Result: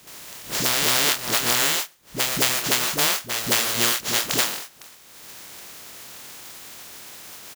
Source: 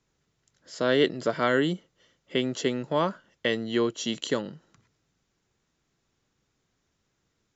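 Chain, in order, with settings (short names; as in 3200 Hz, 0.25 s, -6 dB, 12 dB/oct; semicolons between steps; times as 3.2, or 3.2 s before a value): spectral contrast lowered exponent 0.11; HPF 100 Hz 6 dB/oct; doubler 25 ms -7 dB; dispersion highs, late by 73 ms, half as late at 310 Hz; reverse echo 0.223 s -10.5 dB; three-band squash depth 100%; gain +3.5 dB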